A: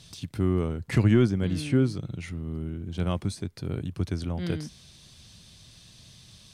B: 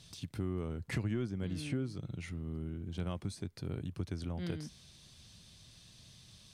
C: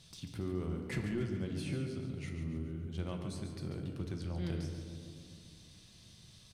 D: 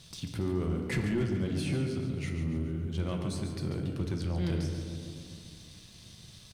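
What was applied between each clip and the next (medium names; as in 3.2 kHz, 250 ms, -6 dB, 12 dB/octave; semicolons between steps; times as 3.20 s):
compression 3:1, threshold -28 dBFS, peak gain reduction 10 dB; trim -6 dB
feedback delay 141 ms, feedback 50%, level -9 dB; on a send at -4 dB: reverberation RT60 2.2 s, pre-delay 5 ms; on the sum: trim -2.5 dB
waveshaping leveller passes 1; trim +3.5 dB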